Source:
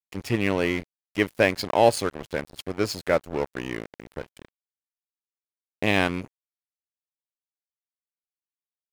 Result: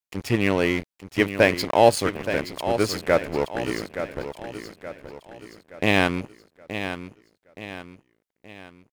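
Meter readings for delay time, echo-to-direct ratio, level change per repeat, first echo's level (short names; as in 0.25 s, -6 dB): 0.873 s, -9.0 dB, -7.0 dB, -10.0 dB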